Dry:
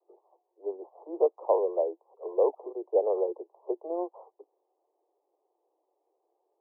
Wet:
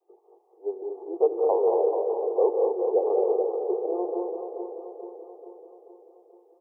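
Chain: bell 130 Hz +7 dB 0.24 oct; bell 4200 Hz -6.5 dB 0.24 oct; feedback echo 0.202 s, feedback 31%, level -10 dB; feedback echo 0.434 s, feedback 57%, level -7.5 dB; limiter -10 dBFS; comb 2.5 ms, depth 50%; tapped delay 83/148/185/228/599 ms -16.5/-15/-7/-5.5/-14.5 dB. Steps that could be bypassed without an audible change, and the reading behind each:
bell 130 Hz: input band starts at 290 Hz; bell 4200 Hz: input band ends at 1100 Hz; limiter -10 dBFS: input peak -12.0 dBFS

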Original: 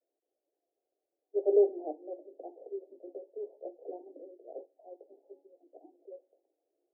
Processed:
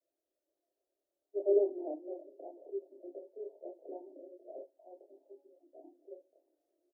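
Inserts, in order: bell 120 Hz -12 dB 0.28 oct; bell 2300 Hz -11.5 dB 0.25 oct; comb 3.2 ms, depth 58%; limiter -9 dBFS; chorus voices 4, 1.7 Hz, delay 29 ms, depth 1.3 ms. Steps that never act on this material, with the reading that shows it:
bell 120 Hz: input band starts at 270 Hz; bell 2300 Hz: input band ends at 810 Hz; limiter -9 dBFS: input peak -14.5 dBFS

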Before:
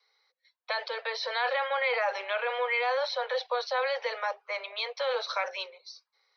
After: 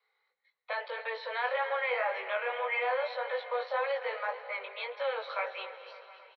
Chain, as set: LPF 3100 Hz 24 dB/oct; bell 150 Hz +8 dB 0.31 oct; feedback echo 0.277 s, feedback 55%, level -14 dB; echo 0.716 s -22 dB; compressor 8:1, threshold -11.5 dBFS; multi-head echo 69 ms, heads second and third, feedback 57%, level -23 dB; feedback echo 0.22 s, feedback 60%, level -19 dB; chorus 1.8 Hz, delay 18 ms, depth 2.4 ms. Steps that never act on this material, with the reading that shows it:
bell 150 Hz: input band starts at 380 Hz; compressor, threshold -11.5 dBFS: input peak -17.0 dBFS

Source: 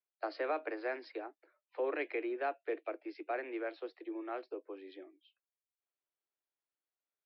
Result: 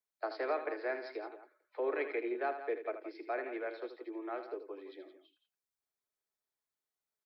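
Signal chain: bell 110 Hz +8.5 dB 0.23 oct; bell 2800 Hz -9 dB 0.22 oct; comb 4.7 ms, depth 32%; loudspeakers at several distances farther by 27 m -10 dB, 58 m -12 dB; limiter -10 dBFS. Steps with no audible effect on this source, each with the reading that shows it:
bell 110 Hz: input band starts at 230 Hz; limiter -10 dBFS: input peak -23.5 dBFS

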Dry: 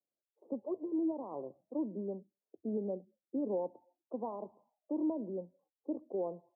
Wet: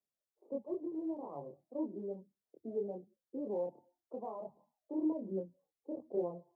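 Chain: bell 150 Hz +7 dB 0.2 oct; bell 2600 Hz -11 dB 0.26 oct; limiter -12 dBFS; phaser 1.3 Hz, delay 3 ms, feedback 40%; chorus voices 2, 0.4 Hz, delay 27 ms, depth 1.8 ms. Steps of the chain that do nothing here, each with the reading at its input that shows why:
bell 2600 Hz: input band ends at 1100 Hz; limiter -12 dBFS: input peak -25.0 dBFS

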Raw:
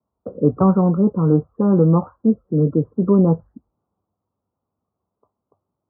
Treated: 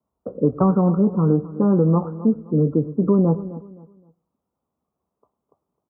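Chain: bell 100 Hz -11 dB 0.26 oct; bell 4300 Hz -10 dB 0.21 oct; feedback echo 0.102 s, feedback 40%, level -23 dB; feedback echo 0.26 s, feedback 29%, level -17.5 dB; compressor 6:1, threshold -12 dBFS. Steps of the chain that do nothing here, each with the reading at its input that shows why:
bell 4300 Hz: input band ends at 1200 Hz

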